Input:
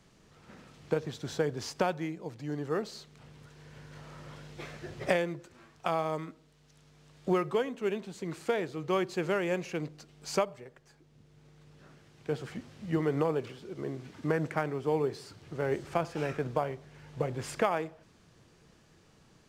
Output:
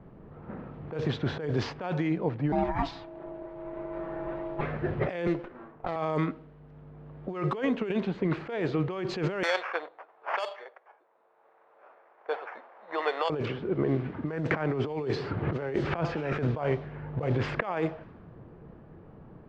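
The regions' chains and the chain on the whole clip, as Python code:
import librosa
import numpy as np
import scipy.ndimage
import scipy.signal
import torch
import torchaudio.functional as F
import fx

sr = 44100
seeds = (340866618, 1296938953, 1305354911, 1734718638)

y = fx.chain(x, sr, fx.comb(ms=6.0, depth=0.69),
    fx.ring_mod(carrier_hz=490.0), at=(2.52, 4.61))
y = fx.chain(y, sr, fx.highpass(hz=240.0, slope=12),
    fx.running_max(window=9), at=(5.27, 5.96))
y = fx.chain(y, sr, fx.sample_hold(seeds[0], rate_hz=3900.0, jitter_pct=0),
    fx.highpass(hz=640.0, slope=24), at=(9.43, 13.3))
y = fx.chain(y, sr, fx.high_shelf(hz=9700.0, db=-11.0),
    fx.band_squash(depth_pct=100), at=(14.51, 16.33))
y = scipy.signal.sosfilt(scipy.signal.butter(2, 3500.0, 'lowpass', fs=sr, output='sos'), y)
y = fx.env_lowpass(y, sr, base_hz=850.0, full_db=-26.0)
y = fx.over_compress(y, sr, threshold_db=-37.0, ratio=-1.0)
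y = y * 10.0 ** (8.0 / 20.0)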